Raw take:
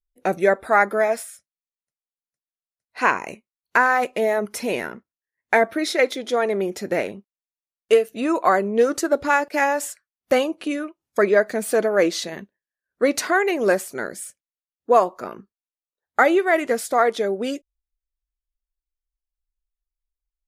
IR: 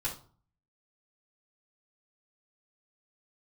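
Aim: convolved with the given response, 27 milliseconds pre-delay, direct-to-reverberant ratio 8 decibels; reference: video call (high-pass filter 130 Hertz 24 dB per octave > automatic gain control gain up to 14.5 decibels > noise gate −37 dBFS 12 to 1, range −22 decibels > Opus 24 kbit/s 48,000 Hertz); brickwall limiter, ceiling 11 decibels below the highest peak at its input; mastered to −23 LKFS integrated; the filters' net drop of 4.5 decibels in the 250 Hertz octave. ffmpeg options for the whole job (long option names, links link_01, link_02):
-filter_complex "[0:a]equalizer=frequency=250:width_type=o:gain=-6.5,alimiter=limit=-14.5dB:level=0:latency=1,asplit=2[link_01][link_02];[1:a]atrim=start_sample=2205,adelay=27[link_03];[link_02][link_03]afir=irnorm=-1:irlink=0,volume=-11.5dB[link_04];[link_01][link_04]amix=inputs=2:normalize=0,highpass=frequency=130:width=0.5412,highpass=frequency=130:width=1.3066,dynaudnorm=maxgain=14.5dB,agate=range=-22dB:threshold=-37dB:ratio=12,volume=-2.5dB" -ar 48000 -c:a libopus -b:a 24k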